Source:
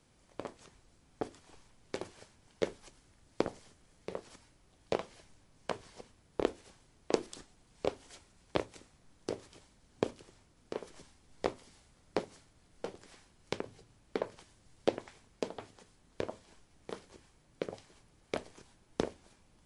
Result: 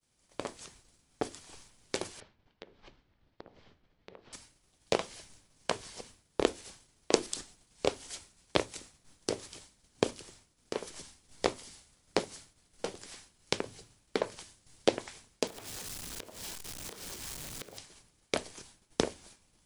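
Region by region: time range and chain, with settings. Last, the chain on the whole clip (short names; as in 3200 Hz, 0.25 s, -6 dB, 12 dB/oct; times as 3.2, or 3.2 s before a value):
2.2–4.33 high shelf 2200 Hz -9 dB + compressor 8:1, threshold -50 dBFS + LPF 4000 Hz 24 dB/oct
15.47–17.78 zero-crossing step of -45.5 dBFS + compressor, threshold -49 dBFS
whole clip: expander -57 dBFS; high shelf 2900 Hz +11.5 dB; gain +3 dB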